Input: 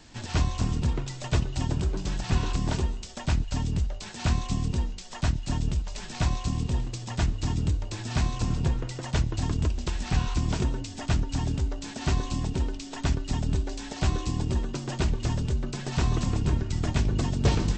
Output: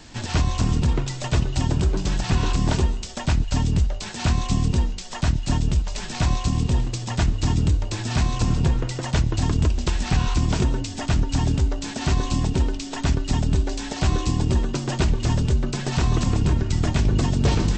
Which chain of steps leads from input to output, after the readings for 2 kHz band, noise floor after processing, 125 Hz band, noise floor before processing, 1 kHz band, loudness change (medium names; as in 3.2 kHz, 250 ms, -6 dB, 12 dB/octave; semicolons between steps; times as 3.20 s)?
+5.5 dB, -32 dBFS, +5.5 dB, -39 dBFS, +6.0 dB, +6.0 dB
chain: peak limiter -18 dBFS, peak gain reduction 5.5 dB; trim +7 dB